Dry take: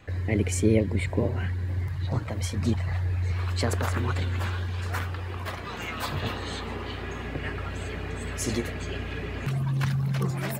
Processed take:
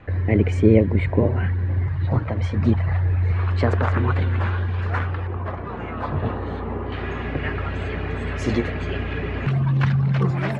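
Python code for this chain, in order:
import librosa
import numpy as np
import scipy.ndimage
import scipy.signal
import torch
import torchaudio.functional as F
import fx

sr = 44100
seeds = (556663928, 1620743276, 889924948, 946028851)

y = fx.lowpass(x, sr, hz=fx.steps((0.0, 2000.0), (5.27, 1100.0), (6.92, 2700.0)), slope=12)
y = F.gain(torch.from_numpy(y), 7.0).numpy()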